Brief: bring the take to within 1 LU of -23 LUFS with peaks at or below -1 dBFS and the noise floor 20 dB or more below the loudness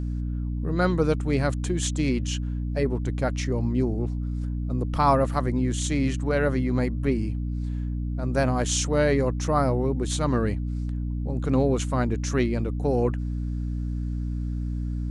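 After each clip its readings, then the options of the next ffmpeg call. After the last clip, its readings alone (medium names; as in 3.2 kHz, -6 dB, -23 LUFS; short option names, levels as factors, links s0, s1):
hum 60 Hz; highest harmonic 300 Hz; hum level -26 dBFS; loudness -26.0 LUFS; peak level -8.0 dBFS; loudness target -23.0 LUFS
-> -af "bandreject=f=60:t=h:w=6,bandreject=f=120:t=h:w=6,bandreject=f=180:t=h:w=6,bandreject=f=240:t=h:w=6,bandreject=f=300:t=h:w=6"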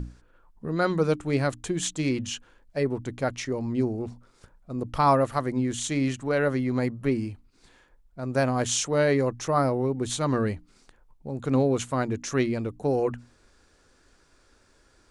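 hum not found; loudness -27.0 LUFS; peak level -9.5 dBFS; loudness target -23.0 LUFS
-> -af "volume=1.58"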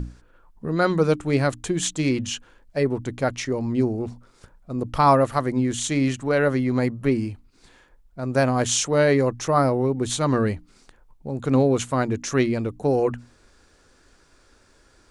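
loudness -23.0 LUFS; peak level -5.5 dBFS; noise floor -58 dBFS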